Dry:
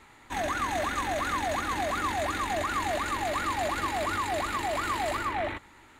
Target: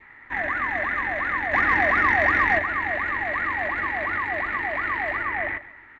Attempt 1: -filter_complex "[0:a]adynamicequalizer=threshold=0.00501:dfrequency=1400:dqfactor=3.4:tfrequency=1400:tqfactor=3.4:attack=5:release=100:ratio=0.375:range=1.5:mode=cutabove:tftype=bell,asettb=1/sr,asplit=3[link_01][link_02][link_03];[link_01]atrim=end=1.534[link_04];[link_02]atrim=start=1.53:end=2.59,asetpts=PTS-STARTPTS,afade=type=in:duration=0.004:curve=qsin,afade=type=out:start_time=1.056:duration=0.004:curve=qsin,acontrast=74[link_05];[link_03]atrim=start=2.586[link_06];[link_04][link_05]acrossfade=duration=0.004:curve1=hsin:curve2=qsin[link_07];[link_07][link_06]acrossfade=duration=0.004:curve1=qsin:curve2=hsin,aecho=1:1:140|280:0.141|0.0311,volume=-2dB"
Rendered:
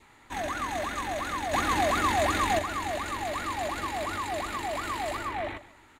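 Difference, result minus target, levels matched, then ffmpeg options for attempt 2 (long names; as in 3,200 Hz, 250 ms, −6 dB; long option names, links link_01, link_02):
2,000 Hz band −6.0 dB
-filter_complex "[0:a]adynamicequalizer=threshold=0.00501:dfrequency=1400:dqfactor=3.4:tfrequency=1400:tqfactor=3.4:attack=5:release=100:ratio=0.375:range=1.5:mode=cutabove:tftype=bell,lowpass=frequency=1900:width_type=q:width=7.1,asettb=1/sr,asplit=3[link_01][link_02][link_03];[link_01]atrim=end=1.534[link_04];[link_02]atrim=start=1.53:end=2.59,asetpts=PTS-STARTPTS,afade=type=in:duration=0.004:curve=qsin,afade=type=out:start_time=1.056:duration=0.004:curve=qsin,acontrast=74[link_05];[link_03]atrim=start=2.586[link_06];[link_04][link_05]acrossfade=duration=0.004:curve1=hsin:curve2=qsin[link_07];[link_07][link_06]acrossfade=duration=0.004:curve1=qsin:curve2=hsin,aecho=1:1:140|280:0.141|0.0311,volume=-2dB"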